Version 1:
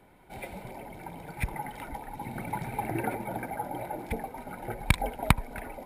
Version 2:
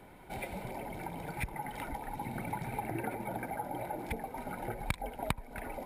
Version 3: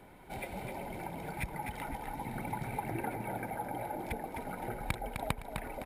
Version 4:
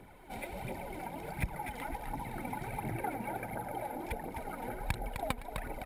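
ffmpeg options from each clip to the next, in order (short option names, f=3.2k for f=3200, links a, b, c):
-af "acompressor=threshold=-42dB:ratio=2.5,volume=4dB"
-af "aecho=1:1:256|512|768|1024:0.473|0.151|0.0485|0.0155,volume=-1dB"
-af "aphaser=in_gain=1:out_gain=1:delay=4.4:decay=0.51:speed=1.4:type=triangular,volume=-1.5dB"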